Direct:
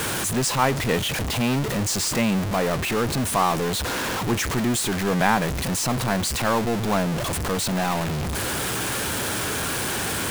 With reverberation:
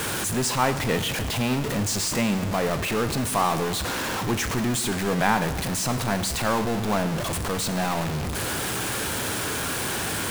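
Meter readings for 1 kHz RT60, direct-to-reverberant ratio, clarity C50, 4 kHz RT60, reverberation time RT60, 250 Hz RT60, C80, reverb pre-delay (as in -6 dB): 1.4 s, 9.5 dB, 11.5 dB, 1.3 s, 1.4 s, 1.3 s, 13.0 dB, 18 ms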